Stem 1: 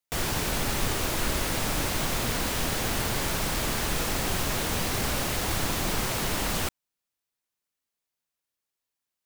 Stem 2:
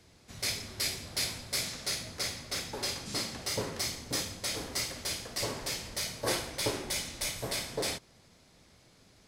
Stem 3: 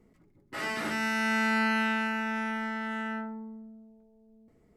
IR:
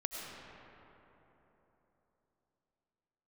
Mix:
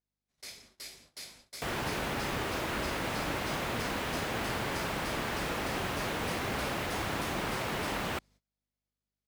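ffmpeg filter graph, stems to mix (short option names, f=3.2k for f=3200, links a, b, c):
-filter_complex "[0:a]acrossover=split=3300[a][b];[b]acompressor=threshold=-45dB:ratio=4:attack=1:release=60[c];[a][c]amix=inputs=2:normalize=0,highpass=41,adelay=1500,volume=-2dB[d];[1:a]equalizer=f=100:t=o:w=0.79:g=-9,aeval=exprs='val(0)+0.00282*(sin(2*PI*50*n/s)+sin(2*PI*2*50*n/s)/2+sin(2*PI*3*50*n/s)/3+sin(2*PI*4*50*n/s)/4+sin(2*PI*5*50*n/s)/5)':c=same,volume=-13dB[e];[d][e]amix=inputs=2:normalize=0,agate=range=-23dB:threshold=-56dB:ratio=16:detection=peak,lowshelf=f=140:g=-8"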